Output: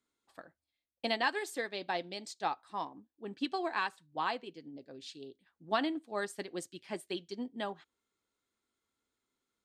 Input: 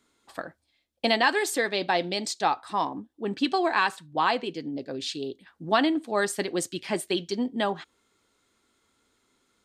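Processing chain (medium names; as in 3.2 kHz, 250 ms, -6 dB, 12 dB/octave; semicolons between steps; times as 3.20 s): upward expansion 1.5:1, over -36 dBFS; trim -8 dB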